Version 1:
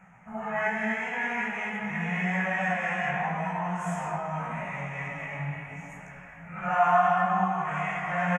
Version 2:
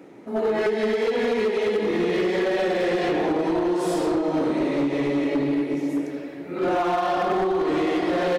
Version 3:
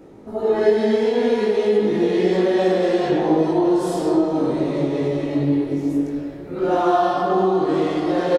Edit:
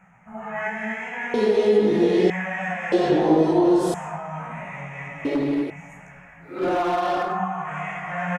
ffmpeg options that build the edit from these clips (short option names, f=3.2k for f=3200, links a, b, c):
-filter_complex "[2:a]asplit=2[a][b];[1:a]asplit=2[c][d];[0:a]asplit=5[e][f][g][h][i];[e]atrim=end=1.342[j];[a]atrim=start=1.338:end=2.302[k];[f]atrim=start=2.298:end=2.922[l];[b]atrim=start=2.918:end=3.942[m];[g]atrim=start=3.938:end=5.252[n];[c]atrim=start=5.248:end=5.702[o];[h]atrim=start=5.698:end=6.64[p];[d]atrim=start=6.4:end=7.4[q];[i]atrim=start=7.16[r];[j][k]acrossfade=d=0.004:c1=hsin:c2=hsin[s];[s][l]acrossfade=d=0.004:c1=hsin:c2=hsin[t];[t][m]acrossfade=d=0.004:c1=hsin:c2=hsin[u];[u][n]acrossfade=d=0.004:c1=hsin:c2=hsin[v];[v][o]acrossfade=d=0.004:c1=hsin:c2=hsin[w];[w][p]acrossfade=d=0.004:c1=hsin:c2=hsin[x];[x][q]acrossfade=d=0.24:c1=tri:c2=tri[y];[y][r]acrossfade=d=0.24:c1=tri:c2=tri"